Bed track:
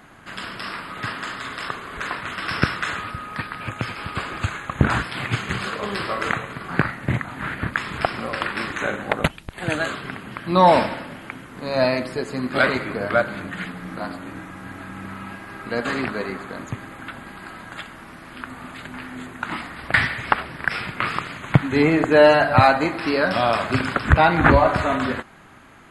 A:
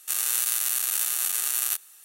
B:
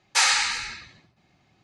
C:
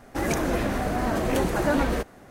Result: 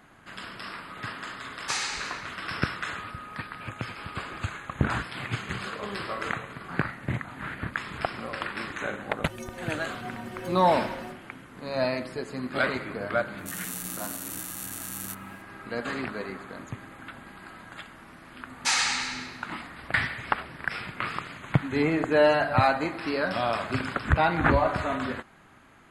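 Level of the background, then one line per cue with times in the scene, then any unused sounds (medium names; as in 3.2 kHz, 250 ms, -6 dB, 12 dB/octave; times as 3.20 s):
bed track -7.5 dB
1.53 s: add B -10.5 dB
9.09 s: add C -1.5 dB + inharmonic resonator 110 Hz, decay 0.62 s, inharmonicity 0.03
13.38 s: add A -11.5 dB
18.50 s: add B -5 dB + tape echo 99 ms, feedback 63%, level -7 dB, low-pass 5.3 kHz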